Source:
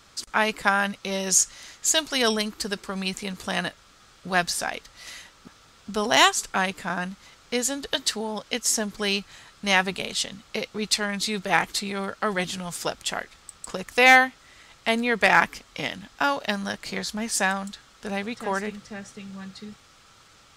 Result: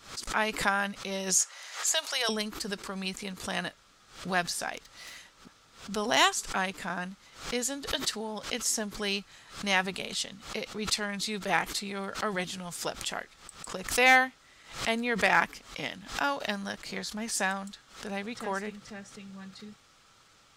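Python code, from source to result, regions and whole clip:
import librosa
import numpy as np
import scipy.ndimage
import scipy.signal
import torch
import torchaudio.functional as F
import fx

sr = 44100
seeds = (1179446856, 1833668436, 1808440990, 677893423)

y = fx.chain(x, sr, fx.highpass(hz=540.0, slope=24),
    fx.band_squash(depth_pct=40), at=(1.4, 2.29))
y = fx.chain(y, sr, fx.self_delay(depth_ms=0.072),
    fx.band_squash(depth_pct=100), at=(4.77, 5.18))
y = fx.peak_eq(y, sr, hz=63.0, db=-5.0, octaves=1.1)
y = fx.pre_swell(y, sr, db_per_s=120.0)
y = y * librosa.db_to_amplitude(-6.0)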